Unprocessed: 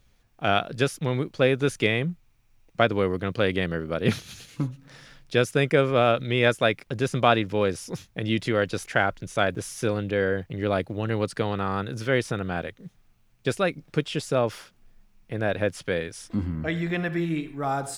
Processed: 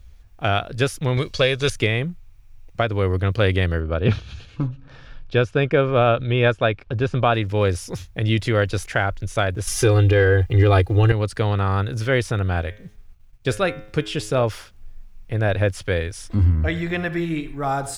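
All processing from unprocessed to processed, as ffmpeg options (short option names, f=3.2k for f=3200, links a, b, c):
-filter_complex "[0:a]asettb=1/sr,asplit=3[a][b][c];[a]atrim=end=1.174[d];[b]atrim=start=1.17:end=1.7,asetpts=PTS-STARTPTS,afade=t=in:d=0.004:c=qsin,afade=t=out:st=0.526:d=0.004:c=qsin,equalizer=f=4.9k:w=0.58:g=13.5,aecho=1:1:1.8:0.39,atrim=end_sample=23373[e];[c]atrim=start=1.696[f];[d][e]acrossfade=d=0.004:c1=hsin:c2=qsin[g];[g][f]acrossfade=d=0.004:c1=qsin:c2=hsin,asettb=1/sr,asplit=3[h][i][j];[h]atrim=end=3.804[k];[i]atrim=start=3.8:end=7.34,asetpts=PTS-STARTPTS,afade=t=in:d=0.004:c=qsin,afade=t=out:st=3.536:d=0.004:c=qsin,lowpass=3.1k,bandreject=f=2k:w=5.6[l];[j]atrim=start=7.336[m];[k][l]acrossfade=d=0.004:c1=hsin:c2=qsin[n];[n][m]acrossfade=d=0.004:c1=qsin:c2=hsin,asettb=1/sr,asplit=3[o][p][q];[o]atrim=end=9.674[r];[p]atrim=start=9.67:end=11.12,asetpts=PTS-STARTPTS,afade=t=in:d=0.004:c=qsin,afade=t=out:st=1.446:d=0.004:c=qsin,aecho=1:1:2.5:0.76,atrim=end_sample=63945,acontrast=77[s];[q]atrim=start=11.116[t];[r][s]acrossfade=d=0.004:c1=hsin:c2=qsin[u];[u][t]acrossfade=d=0.004:c1=qsin:c2=hsin,asettb=1/sr,asplit=3[v][w][x];[v]atrim=end=12.604[y];[w]atrim=start=12.6:end=14.43,asetpts=PTS-STARTPTS,afade=t=in:d=0.004:c=qsin,afade=t=out:st=1.826:d=0.004:c=qsin,bandreject=f=105.6:t=h:w=4,bandreject=f=211.2:t=h:w=4,bandreject=f=316.8:t=h:w=4,bandreject=f=422.4:t=h:w=4,bandreject=f=528:t=h:w=4,bandreject=f=633.6:t=h:w=4,bandreject=f=739.2:t=h:w=4,bandreject=f=844.8:t=h:w=4,bandreject=f=950.4:t=h:w=4,bandreject=f=1.056k:t=h:w=4,bandreject=f=1.1616k:t=h:w=4,bandreject=f=1.2672k:t=h:w=4,bandreject=f=1.3728k:t=h:w=4,bandreject=f=1.4784k:t=h:w=4,bandreject=f=1.584k:t=h:w=4,bandreject=f=1.6896k:t=h:w=4,bandreject=f=1.7952k:t=h:w=4,bandreject=f=1.9008k:t=h:w=4,bandreject=f=2.0064k:t=h:w=4,bandreject=f=2.112k:t=h:w=4,bandreject=f=2.2176k:t=h:w=4,bandreject=f=2.3232k:t=h:w=4,bandreject=f=2.4288k:t=h:w=4,bandreject=f=2.5344k:t=h:w=4,bandreject=f=2.64k:t=h:w=4,bandreject=f=2.7456k:t=h:w=4,bandreject=f=2.8512k:t=h:w=4,bandreject=f=2.9568k:t=h:w=4,bandreject=f=3.0624k:t=h:w=4,bandreject=f=3.168k:t=h:w=4,bandreject=f=3.2736k:t=h:w=4,bandreject=f=3.3792k:t=h:w=4,bandreject=f=3.4848k:t=h:w=4,bandreject=f=3.5904k:t=h:w=4,bandreject=f=3.696k:t=h:w=4,agate=range=-33dB:threshold=-59dB:ratio=3:release=100:detection=peak[z];[x]atrim=start=14.426[aa];[y][z]acrossfade=d=0.004:c1=hsin:c2=qsin[ab];[ab][aa]acrossfade=d=0.004:c1=qsin:c2=hsin,lowshelf=f=110:t=q:w=1.5:g=13,alimiter=limit=-10.5dB:level=0:latency=1:release=355,volume=4dB"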